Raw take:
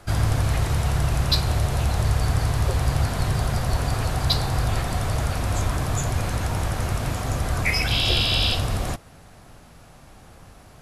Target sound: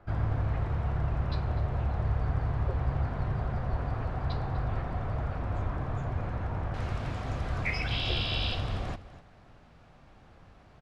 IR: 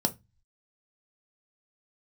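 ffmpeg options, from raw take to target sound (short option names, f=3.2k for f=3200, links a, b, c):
-af "asetnsamples=n=441:p=0,asendcmd='6.74 lowpass f 3500',lowpass=1.6k,aecho=1:1:248:0.158,volume=-8dB"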